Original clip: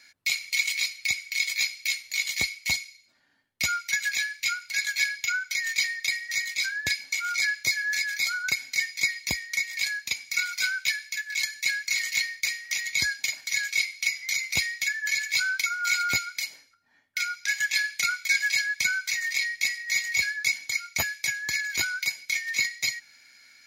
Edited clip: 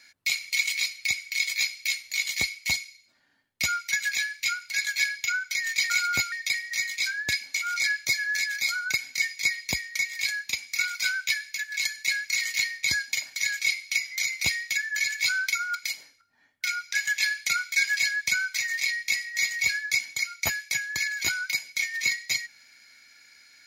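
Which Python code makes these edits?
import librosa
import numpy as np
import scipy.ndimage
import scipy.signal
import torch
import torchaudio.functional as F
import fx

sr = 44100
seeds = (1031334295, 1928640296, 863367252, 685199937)

y = fx.edit(x, sr, fx.cut(start_s=12.41, length_s=0.53),
    fx.move(start_s=15.86, length_s=0.42, to_s=5.9), tone=tone)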